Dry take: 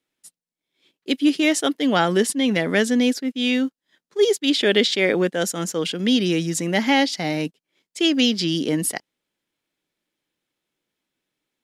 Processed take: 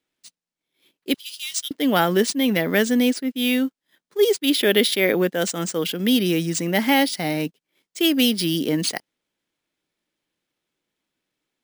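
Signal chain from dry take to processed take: 1.14–1.71 inverse Chebyshev high-pass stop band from 740 Hz, stop band 70 dB; careless resampling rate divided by 3×, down none, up hold

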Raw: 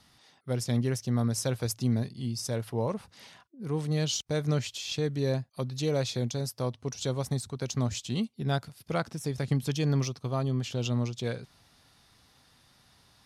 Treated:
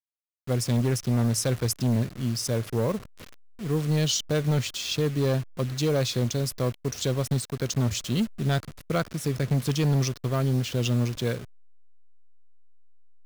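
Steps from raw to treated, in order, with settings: level-crossing sampler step -41.5 dBFS; bell 840 Hz -7 dB 0.38 oct; hard clip -24.5 dBFS, distortion -16 dB; gain +5.5 dB

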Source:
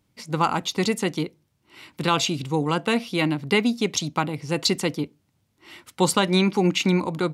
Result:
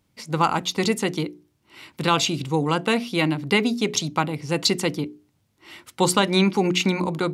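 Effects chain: notches 60/120/180/240/300/360/420 Hz; gain +1.5 dB

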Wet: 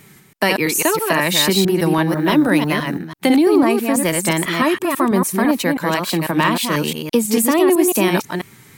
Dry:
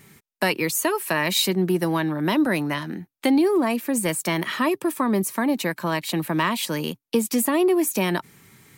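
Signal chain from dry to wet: reverse delay 0.165 s, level -4 dB; 2.07–2.97 added noise violet -57 dBFS; wow and flutter 59 cents; gain +5 dB

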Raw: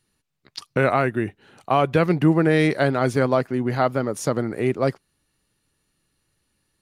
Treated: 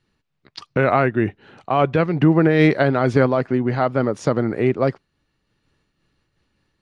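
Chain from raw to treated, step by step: air absorption 110 m; limiter -10 dBFS, peak gain reduction 3 dB; high shelf 7300 Hz -5.5 dB; noise-modulated level, depth 65%; gain +7.5 dB

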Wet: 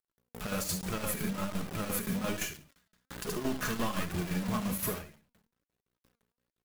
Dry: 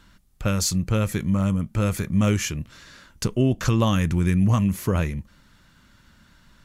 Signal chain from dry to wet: transient shaper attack +1 dB, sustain +5 dB; bell 5900 Hz -14.5 dB 2.2 oct; buzz 60 Hz, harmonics 3, -37 dBFS -5 dB/oct; tilt +3 dB/oct; soft clip -29.5 dBFS, distortion -8 dB; on a send: feedback echo 73 ms, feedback 23%, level -5.5 dB; on the sum: shoebox room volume 3800 m³, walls furnished, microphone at 1.4 m; chopper 5.8 Hz, depth 65%, duty 70%; in parallel at -2 dB: compressor, threshold -30 dBFS, peak gain reduction 5 dB; on the sum: bit-crush 6-bit; flange 1.2 Hz, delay 2.4 ms, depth 2.3 ms, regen +59%; ending taper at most 120 dB/s

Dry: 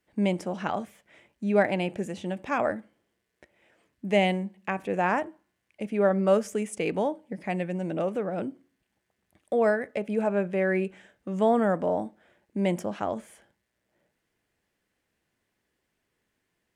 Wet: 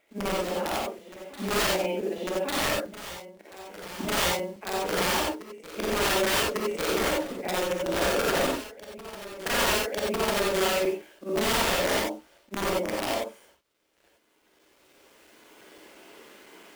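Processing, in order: short-time reversal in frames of 0.121 s; recorder AGC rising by 11 dB/s; treble ducked by the level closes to 2300 Hz, closed at -24 dBFS; HPF 240 Hz 24 dB/oct; high shelf 6000 Hz -11.5 dB; notch 1800 Hz, Q 10; bit-crush 10-bit; wrapped overs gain 24 dB; companded quantiser 6-bit; reverse echo 1.149 s -14 dB; non-linear reverb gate 0.11 s rising, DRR -2.5 dB; crackling interface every 0.17 s, samples 128, zero, from 0.65

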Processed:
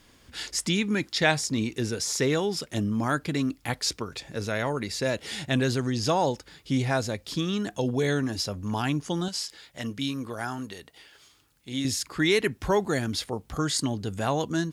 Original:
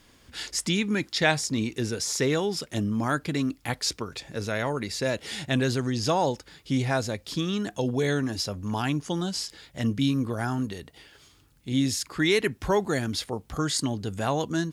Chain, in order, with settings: 9.28–11.85 low shelf 330 Hz -11 dB

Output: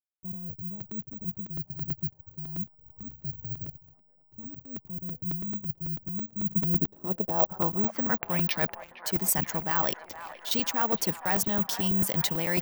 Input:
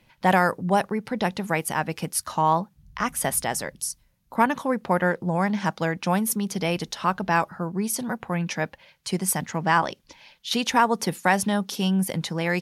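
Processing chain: reverse; compressor 6:1, threshold -29 dBFS, peak gain reduction 14.5 dB; reverse; backlash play -42.5 dBFS; low-pass sweep 120 Hz -> 7900 Hz, 6.36–8.93; careless resampling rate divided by 2×, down none, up zero stuff; on a send: band-limited delay 0.463 s, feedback 75%, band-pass 1200 Hz, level -12 dB; on the sum: crackling interface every 0.11 s, samples 128, repeat, from 0.8; gain +2 dB

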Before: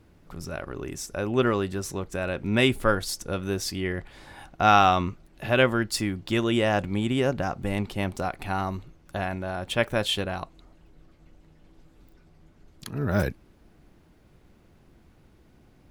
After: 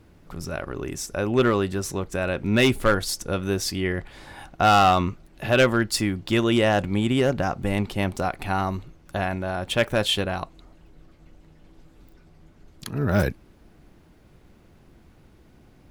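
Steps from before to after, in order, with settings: hard clip -14.5 dBFS, distortion -14 dB; gain +3.5 dB

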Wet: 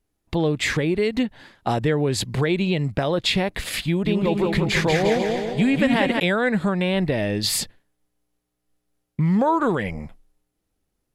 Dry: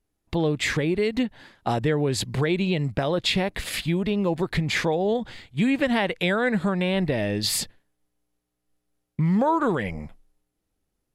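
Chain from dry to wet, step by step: 3.86–6.2 bouncing-ball echo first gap 0.19 s, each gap 0.85×, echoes 5; gain +2 dB

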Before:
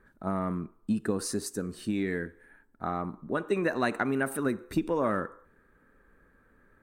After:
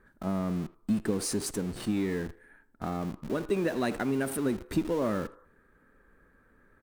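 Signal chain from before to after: dynamic EQ 1300 Hz, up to -8 dB, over -44 dBFS, Q 0.72; in parallel at -9 dB: Schmitt trigger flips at -43 dBFS; on the sum: speakerphone echo 80 ms, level -19 dB

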